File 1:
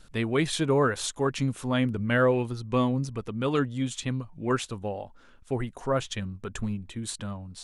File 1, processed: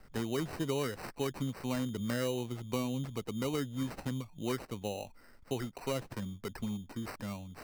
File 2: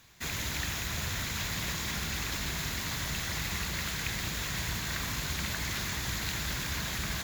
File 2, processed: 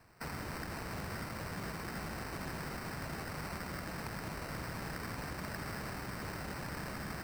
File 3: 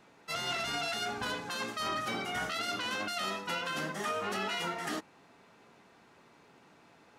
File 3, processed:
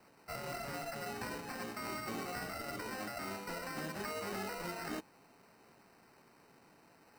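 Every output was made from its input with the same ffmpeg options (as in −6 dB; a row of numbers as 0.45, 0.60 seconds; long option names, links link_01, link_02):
-filter_complex "[0:a]equalizer=frequency=4700:width=2.8:gain=-5.5,acrossover=split=120|540[link_01][link_02][link_03];[link_01]acompressor=threshold=-49dB:ratio=4[link_04];[link_02]acompressor=threshold=-30dB:ratio=4[link_05];[link_03]acompressor=threshold=-38dB:ratio=4[link_06];[link_04][link_05][link_06]amix=inputs=3:normalize=0,acrusher=samples=13:mix=1:aa=0.000001,volume=-3dB"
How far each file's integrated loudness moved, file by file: −9.0, −9.0, −7.0 LU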